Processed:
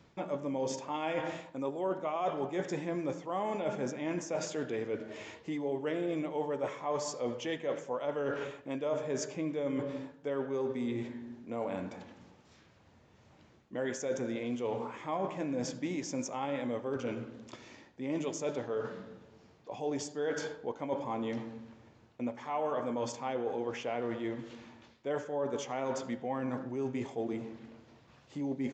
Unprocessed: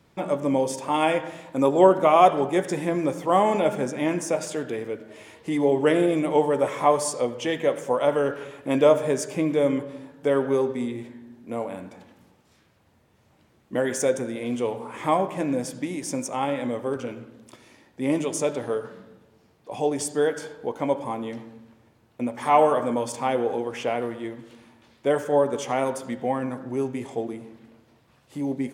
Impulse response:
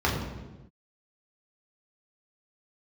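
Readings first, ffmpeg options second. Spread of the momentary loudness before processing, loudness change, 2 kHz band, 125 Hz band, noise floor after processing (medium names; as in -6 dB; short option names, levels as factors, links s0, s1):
14 LU, -12.0 dB, -10.0 dB, -9.0 dB, -62 dBFS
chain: -af "areverse,acompressor=threshold=0.0251:ratio=6,areverse,aresample=16000,aresample=44100"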